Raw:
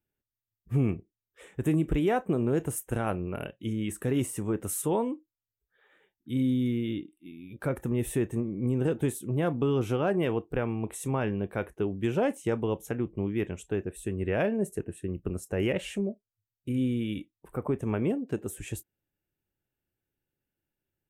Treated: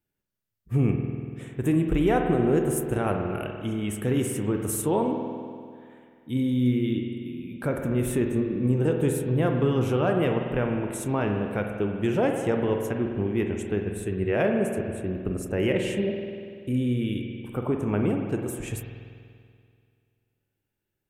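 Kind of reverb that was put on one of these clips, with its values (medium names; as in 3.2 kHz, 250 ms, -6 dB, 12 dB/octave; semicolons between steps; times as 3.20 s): spring tank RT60 2.2 s, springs 48 ms, chirp 60 ms, DRR 3 dB; trim +2.5 dB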